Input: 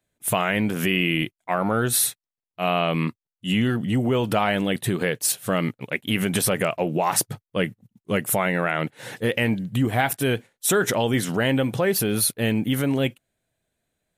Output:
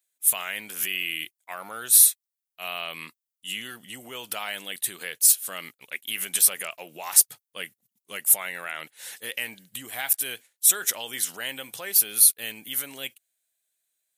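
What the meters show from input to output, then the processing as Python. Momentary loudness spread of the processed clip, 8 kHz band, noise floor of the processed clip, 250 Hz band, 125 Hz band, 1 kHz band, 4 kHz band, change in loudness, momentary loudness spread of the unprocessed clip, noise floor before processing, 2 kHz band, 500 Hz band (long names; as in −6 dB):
20 LU, +6.0 dB, below −85 dBFS, −24.5 dB, below −25 dB, −12.5 dB, −2.0 dB, +1.5 dB, 6 LU, below −85 dBFS, −6.5 dB, −18.5 dB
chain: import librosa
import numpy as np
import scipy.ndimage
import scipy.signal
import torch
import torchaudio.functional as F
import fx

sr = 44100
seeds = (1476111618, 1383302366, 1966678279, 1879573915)

y = np.diff(x, prepend=0.0)
y = y * librosa.db_to_amplitude(4.5)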